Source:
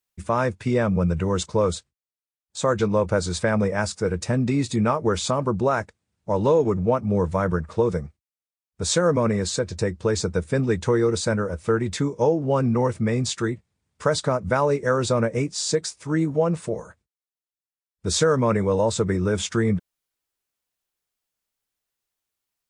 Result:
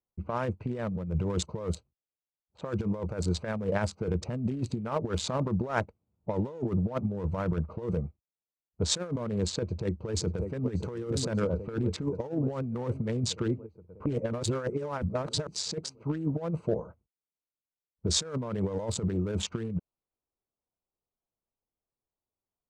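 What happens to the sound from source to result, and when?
9.62–10.71 s: echo throw 590 ms, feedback 70%, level -11.5 dB
14.06–15.47 s: reverse
whole clip: local Wiener filter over 25 samples; level-controlled noise filter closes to 1.6 kHz, open at -18 dBFS; compressor with a negative ratio -25 dBFS, ratio -0.5; trim -4 dB

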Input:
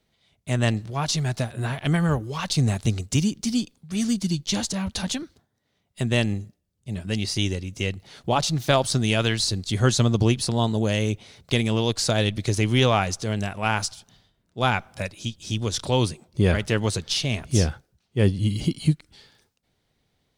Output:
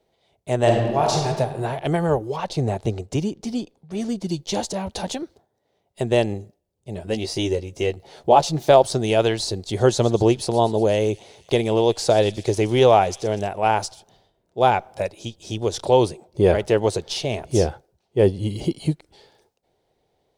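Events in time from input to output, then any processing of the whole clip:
0.56–1.27 s: reverb throw, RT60 1.4 s, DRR -0.5 dB
2.36–4.29 s: treble shelf 4.1 kHz -9.5 dB
7.01–8.69 s: doubling 13 ms -7 dB
9.64–13.48 s: feedback echo behind a high-pass 121 ms, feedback 70%, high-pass 3.5 kHz, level -14 dB
whole clip: high-order bell 560 Hz +12 dB; trim -3 dB

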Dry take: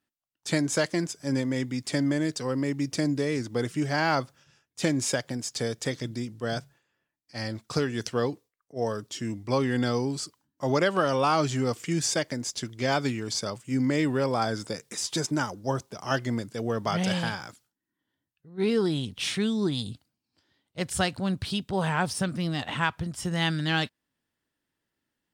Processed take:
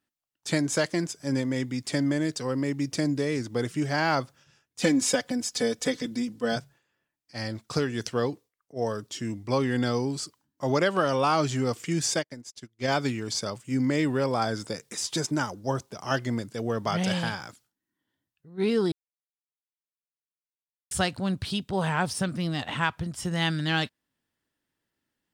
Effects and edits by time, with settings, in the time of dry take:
4.81–6.56 s: comb 4 ms, depth 93%
12.19–12.88 s: upward expansion 2.5:1, over -47 dBFS
18.92–20.91 s: mute

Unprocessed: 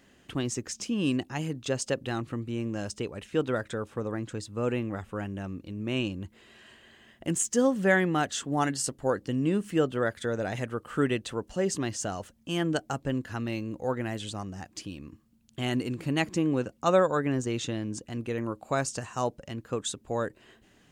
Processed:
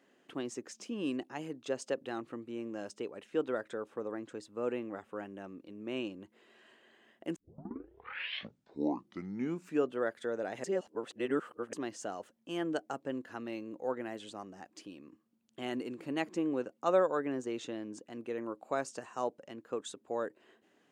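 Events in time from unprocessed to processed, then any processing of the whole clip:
7.36 s: tape start 2.60 s
10.64–11.73 s: reverse
whole clip: Chebyshev high-pass 340 Hz, order 2; treble shelf 2.4 kHz -8.5 dB; trim -4 dB

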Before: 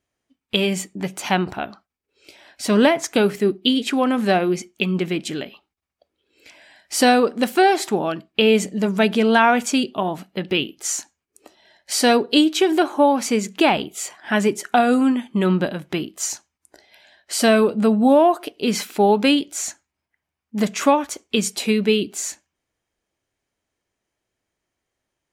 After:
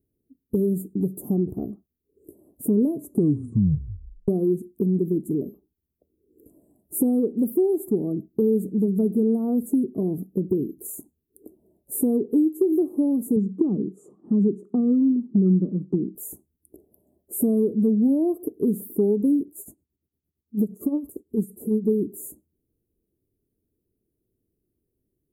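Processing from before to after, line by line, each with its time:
2.94 s: tape stop 1.34 s
13.36–16.15 s: cabinet simulation 140–5700 Hz, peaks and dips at 190 Hz +8 dB, 670 Hz -10 dB, 1.2 kHz +9 dB, 3.9 kHz -7 dB
19.48–21.88 s: tremolo 8.8 Hz, depth 78%
whole clip: inverse Chebyshev band-stop 1.5–5.4 kHz, stop band 60 dB; high-order bell 710 Hz -14.5 dB 1.1 oct; compression 2.5:1, threshold -30 dBFS; trim +7.5 dB

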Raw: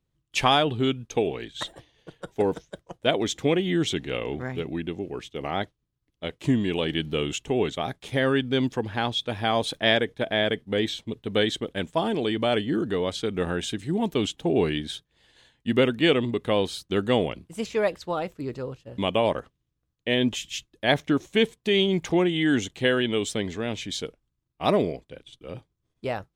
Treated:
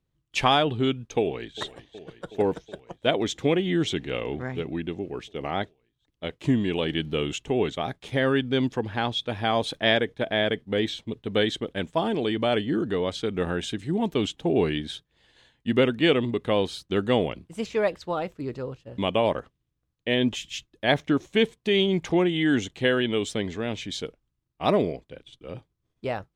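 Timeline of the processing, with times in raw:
1.20–1.61 s: echo throw 370 ms, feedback 80%, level -15.5 dB
whole clip: treble shelf 8 kHz -9 dB

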